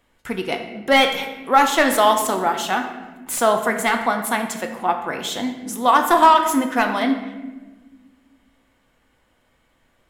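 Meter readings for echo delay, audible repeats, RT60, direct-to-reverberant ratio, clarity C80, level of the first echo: no echo, no echo, 1.3 s, 4.0 dB, 9.0 dB, no echo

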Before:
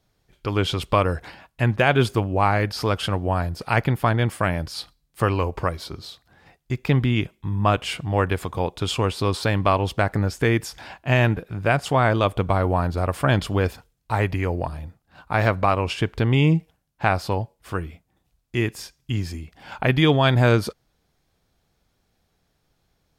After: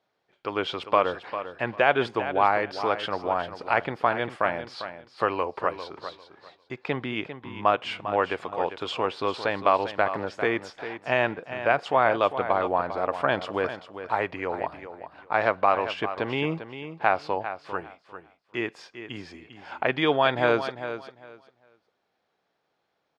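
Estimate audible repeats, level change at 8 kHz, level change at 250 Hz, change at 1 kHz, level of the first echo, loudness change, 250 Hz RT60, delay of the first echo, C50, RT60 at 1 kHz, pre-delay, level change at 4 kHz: 2, under -15 dB, -8.5 dB, 0.0 dB, -11.0 dB, -4.0 dB, no reverb, 399 ms, no reverb, no reverb, no reverb, -5.5 dB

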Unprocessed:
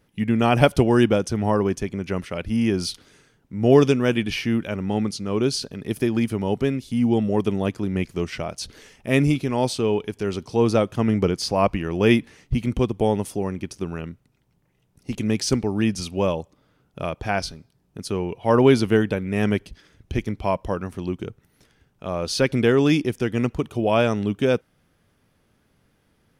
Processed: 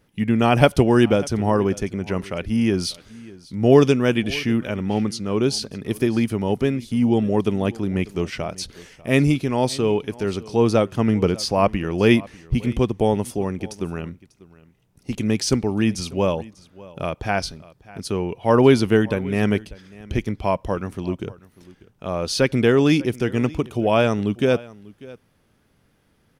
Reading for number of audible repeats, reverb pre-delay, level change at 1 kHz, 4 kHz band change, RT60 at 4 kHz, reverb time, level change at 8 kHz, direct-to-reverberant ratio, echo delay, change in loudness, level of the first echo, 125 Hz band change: 1, no reverb, +1.5 dB, +1.5 dB, no reverb, no reverb, +1.5 dB, no reverb, 594 ms, +1.5 dB, -21.0 dB, +1.5 dB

